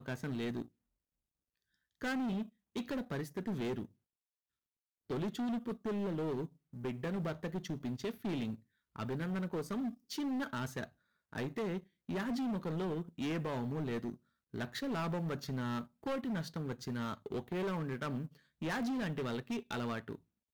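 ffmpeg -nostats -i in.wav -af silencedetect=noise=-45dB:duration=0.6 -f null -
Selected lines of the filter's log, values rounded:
silence_start: 0.66
silence_end: 2.01 | silence_duration: 1.36
silence_start: 3.85
silence_end: 5.10 | silence_duration: 1.25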